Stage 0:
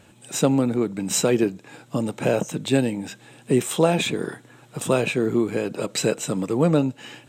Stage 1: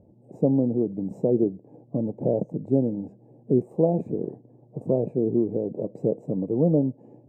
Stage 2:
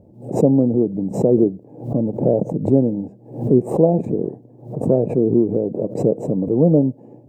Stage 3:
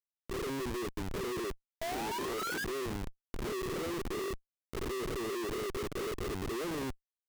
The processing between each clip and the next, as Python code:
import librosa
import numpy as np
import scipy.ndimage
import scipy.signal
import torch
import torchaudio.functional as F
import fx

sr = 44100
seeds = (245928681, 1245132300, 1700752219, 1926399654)

y1 = scipy.signal.sosfilt(scipy.signal.cheby2(4, 40, 1300.0, 'lowpass', fs=sr, output='sos'), x)
y1 = F.gain(torch.from_numpy(y1), -1.5).numpy()
y2 = fx.pre_swell(y1, sr, db_per_s=120.0)
y2 = F.gain(torch.from_numpy(y2), 6.5).numpy()
y3 = fx.double_bandpass(y2, sr, hz=960.0, octaves=2.6)
y3 = fx.spec_paint(y3, sr, seeds[0], shape='rise', start_s=1.81, length_s=0.84, low_hz=640.0, high_hz=1700.0, level_db=-33.0)
y3 = fx.schmitt(y3, sr, flips_db=-36.5)
y3 = F.gain(torch.from_numpy(y3), -9.0).numpy()